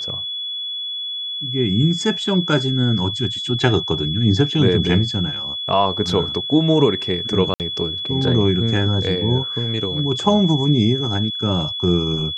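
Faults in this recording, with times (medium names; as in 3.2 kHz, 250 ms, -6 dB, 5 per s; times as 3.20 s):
whine 3.4 kHz -24 dBFS
7.54–7.60 s: dropout 58 ms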